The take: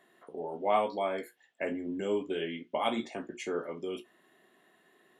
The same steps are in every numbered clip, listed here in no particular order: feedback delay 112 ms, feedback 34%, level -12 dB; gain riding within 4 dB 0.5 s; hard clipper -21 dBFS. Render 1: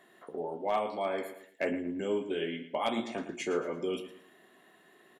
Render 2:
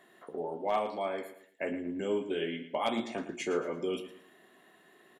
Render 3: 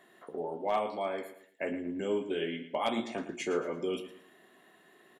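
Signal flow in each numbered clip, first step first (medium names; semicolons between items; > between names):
feedback delay > gain riding > hard clipper; gain riding > hard clipper > feedback delay; gain riding > feedback delay > hard clipper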